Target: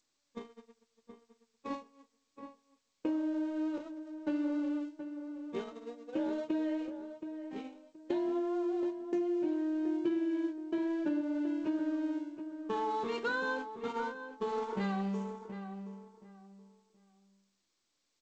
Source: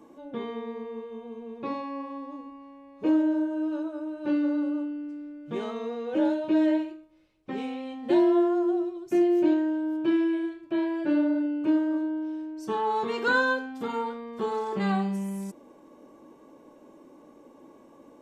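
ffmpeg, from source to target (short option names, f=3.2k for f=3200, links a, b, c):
-filter_complex "[0:a]aeval=exprs='val(0)+0.5*0.0119*sgn(val(0))':c=same,agate=range=-48dB:threshold=-29dB:ratio=16:detection=peak,asettb=1/sr,asplit=3[a][b][c];[a]atrim=end=9.074[d];[b]atrim=start=9.07:end=11.21,asetpts=PTS-STARTPTS,afade=t=in:d=0.004:c=qsin,afade=t=out:st=2.136:d=0.004:c=qsin,adynamicequalizer=threshold=0.0224:dfrequency=270:dqfactor=0.73:tfrequency=270:tqfactor=0.73:attack=5:release=100:ratio=0.375:range=2:mode=boostabove:tftype=bell[e];[c]atrim=start=11.206[f];[d][e]acrossfade=d=0.004:c1=hsin:c2=qsin[g];[g][f]acrossfade=d=0.004:c1=qsin:c2=hsin,acompressor=threshold=-26dB:ratio=10,asplit=2[h][i];[i]adelay=724,lowpass=f=1.9k:p=1,volume=-9dB,asplit=2[j][k];[k]adelay=724,lowpass=f=1.9k:p=1,volume=0.25,asplit=2[l][m];[m]adelay=724,lowpass=f=1.9k:p=1,volume=0.25[n];[h][j][l][n]amix=inputs=4:normalize=0,volume=-4.5dB" -ar 16000 -c:a g722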